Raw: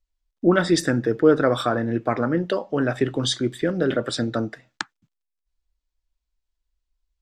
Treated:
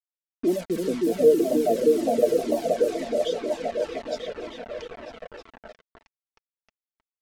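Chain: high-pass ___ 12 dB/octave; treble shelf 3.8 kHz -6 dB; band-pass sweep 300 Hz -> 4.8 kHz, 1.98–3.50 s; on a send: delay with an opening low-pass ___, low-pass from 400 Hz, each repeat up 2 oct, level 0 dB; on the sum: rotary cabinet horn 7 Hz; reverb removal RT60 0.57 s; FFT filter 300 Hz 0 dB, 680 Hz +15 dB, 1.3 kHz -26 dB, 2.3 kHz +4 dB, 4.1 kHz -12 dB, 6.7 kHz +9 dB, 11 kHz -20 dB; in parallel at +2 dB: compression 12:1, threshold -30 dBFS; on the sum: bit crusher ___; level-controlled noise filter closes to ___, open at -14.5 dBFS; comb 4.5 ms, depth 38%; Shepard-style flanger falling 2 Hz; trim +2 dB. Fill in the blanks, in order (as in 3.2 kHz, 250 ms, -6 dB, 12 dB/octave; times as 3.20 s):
140 Hz, 313 ms, 6-bit, 1.7 kHz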